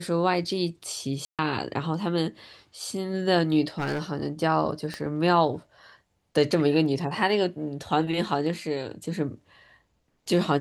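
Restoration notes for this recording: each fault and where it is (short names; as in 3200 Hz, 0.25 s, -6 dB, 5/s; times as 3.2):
1.25–1.39 gap 0.137 s
3.68–4.02 clipped -23.5 dBFS
4.94 pop -19 dBFS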